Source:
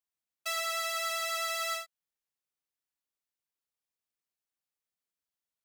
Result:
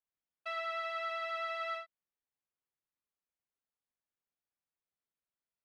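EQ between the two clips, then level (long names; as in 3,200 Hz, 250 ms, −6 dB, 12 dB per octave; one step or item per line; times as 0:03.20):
high-frequency loss of the air 400 metres
high-shelf EQ 10,000 Hz −10 dB
0.0 dB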